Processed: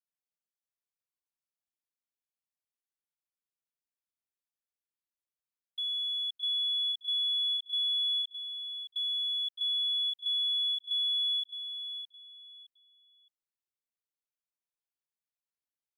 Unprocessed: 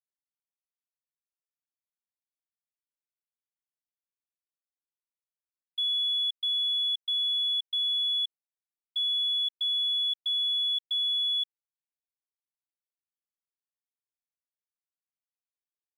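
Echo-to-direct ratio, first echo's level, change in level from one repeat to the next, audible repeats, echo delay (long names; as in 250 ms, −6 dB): −8.0 dB, −8.5 dB, −11.5 dB, 3, 615 ms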